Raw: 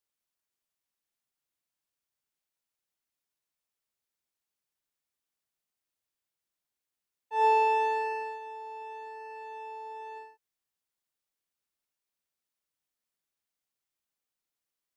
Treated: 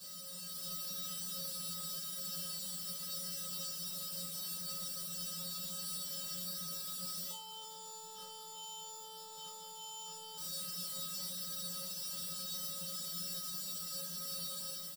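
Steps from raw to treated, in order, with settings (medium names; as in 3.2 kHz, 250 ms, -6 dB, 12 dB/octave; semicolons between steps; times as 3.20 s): one-bit comparator; treble shelf 4 kHz +12 dB; comb 7.1 ms, depth 54%; level rider gain up to 5.5 dB; feedback comb 180 Hz, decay 0.33 s, harmonics odd, mix 100%; small resonant body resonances 200/660/1100 Hz, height 8 dB, ringing for 45 ms; reverberation RT60 0.20 s, pre-delay 3 ms, DRR 9 dB; trim -5 dB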